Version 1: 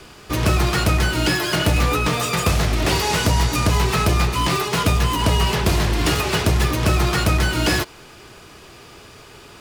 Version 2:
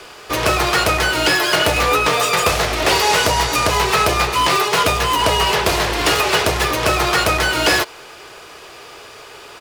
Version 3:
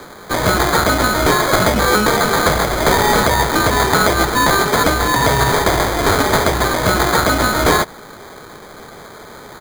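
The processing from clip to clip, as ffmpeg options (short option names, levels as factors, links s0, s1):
-af "firequalizer=gain_entry='entry(210,0);entry(460,14);entry(8000,11)':delay=0.05:min_phase=1,volume=0.447"
-af "acrusher=samples=16:mix=1:aa=0.000001,volume=1.26"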